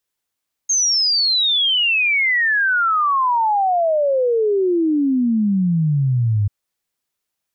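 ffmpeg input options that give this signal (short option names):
-f lavfi -i "aevalsrc='0.2*clip(min(t,5.79-t)/0.01,0,1)*sin(2*PI*6500*5.79/log(99/6500)*(exp(log(99/6500)*t/5.79)-1))':d=5.79:s=44100"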